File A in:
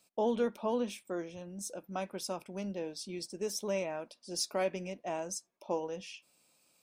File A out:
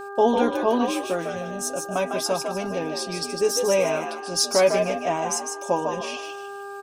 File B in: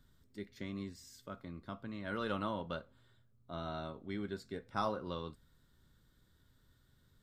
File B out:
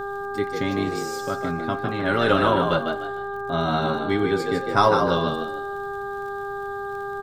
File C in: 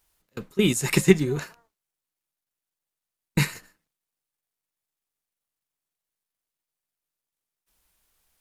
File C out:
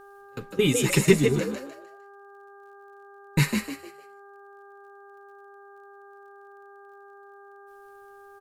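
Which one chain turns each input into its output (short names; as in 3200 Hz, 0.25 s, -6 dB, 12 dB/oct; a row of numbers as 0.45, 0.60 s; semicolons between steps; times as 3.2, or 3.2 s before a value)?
comb 7.2 ms, depth 61%; frequency-shifting echo 0.152 s, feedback 33%, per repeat +66 Hz, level -5.5 dB; buzz 400 Hz, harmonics 4, -47 dBFS -3 dB/oct; crackle 43/s -54 dBFS; match loudness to -24 LUFS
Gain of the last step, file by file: +11.0, +16.5, -2.0 dB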